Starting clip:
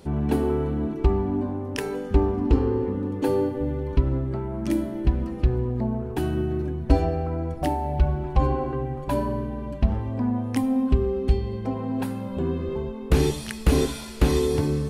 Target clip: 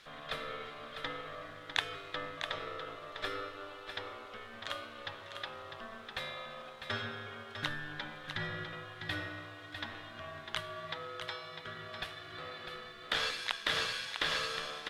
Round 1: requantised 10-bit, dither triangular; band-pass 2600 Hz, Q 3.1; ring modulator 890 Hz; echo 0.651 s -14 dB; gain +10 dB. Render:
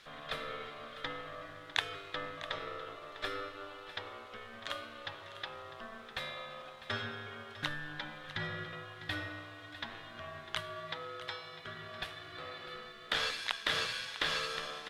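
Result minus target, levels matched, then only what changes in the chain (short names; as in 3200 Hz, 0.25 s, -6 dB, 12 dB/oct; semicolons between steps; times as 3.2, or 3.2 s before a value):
echo-to-direct -6.5 dB
change: echo 0.651 s -7.5 dB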